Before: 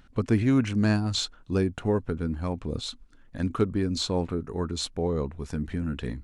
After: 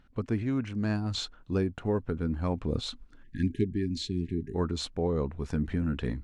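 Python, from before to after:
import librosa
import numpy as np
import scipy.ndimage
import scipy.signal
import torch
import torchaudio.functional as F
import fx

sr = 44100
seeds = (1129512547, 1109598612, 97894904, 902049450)

y = fx.lowpass(x, sr, hz=3500.0, slope=6)
y = fx.rider(y, sr, range_db=10, speed_s=0.5)
y = fx.spec_erase(y, sr, start_s=3.23, length_s=1.32, low_hz=420.0, high_hz=1600.0)
y = F.gain(torch.from_numpy(y), -3.0).numpy()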